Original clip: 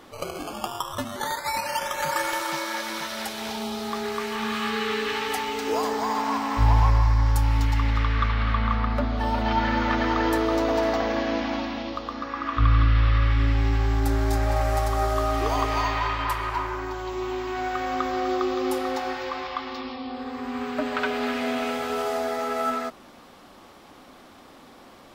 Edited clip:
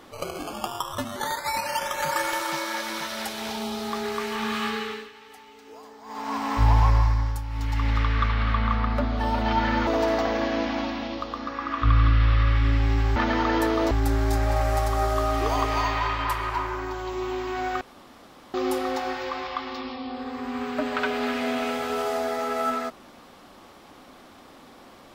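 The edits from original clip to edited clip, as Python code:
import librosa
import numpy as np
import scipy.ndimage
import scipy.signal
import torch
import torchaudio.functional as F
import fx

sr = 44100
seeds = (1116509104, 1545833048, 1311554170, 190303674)

y = fx.edit(x, sr, fx.fade_down_up(start_s=4.64, length_s=1.86, db=-20.0, fade_s=0.46),
    fx.fade_down_up(start_s=7.0, length_s=0.92, db=-11.5, fade_s=0.43),
    fx.move(start_s=9.87, length_s=0.75, to_s=13.91),
    fx.room_tone_fill(start_s=17.81, length_s=0.73), tone=tone)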